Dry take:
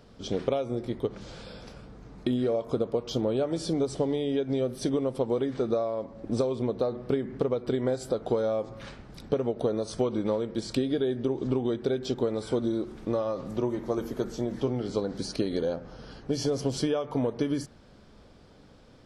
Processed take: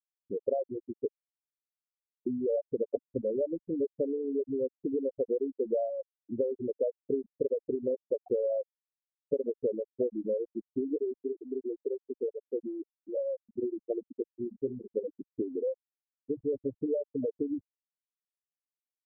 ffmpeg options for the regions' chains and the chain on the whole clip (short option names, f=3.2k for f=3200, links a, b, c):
-filter_complex "[0:a]asettb=1/sr,asplit=3[a][b][c];[a]atrim=end=2.854[d];[b]atrim=start=2.85:end=3.25,asetpts=PTS-STARTPTS,afade=t=in:d=0.004:c=qsin,afade=t=out:st=0.396:d=0.004:c=qsin,bandreject=f=50:t=h:w=6,bandreject=f=100:t=h:w=6,bandreject=f=150:t=h:w=6,bandreject=f=200:t=h:w=6,bandreject=f=250:t=h:w=6,aecho=1:1:7.4:0.66,atrim=end_sample=17640[e];[c]atrim=start=3.246[f];[d][e]acrossfade=d=0.004:c1=hsin:c2=qsin[g];[g][f]acrossfade=d=0.004:c1=qsin:c2=hsin,asettb=1/sr,asplit=3[h][i][j];[h]atrim=end=10.964[k];[i]atrim=start=10.96:end=13.17,asetpts=PTS-STARTPTS,afade=t=in:d=0.004:c=qsin,afade=t=out:st=2.206:d=0.004:c=qsin,asuperstop=centerf=1200:order=12:qfactor=0.65,lowshelf=f=190:g=-10.5[l];[j]atrim=start=13.166[m];[k][l]acrossfade=d=0.004:c1=hsin:c2=qsin[n];[n][m]acrossfade=d=0.004:c1=qsin:c2=hsin,afftfilt=real='re*gte(hypot(re,im),0.2)':imag='im*gte(hypot(re,im),0.2)':win_size=1024:overlap=0.75,equalizer=f=140:t=o:w=1.4:g=-13"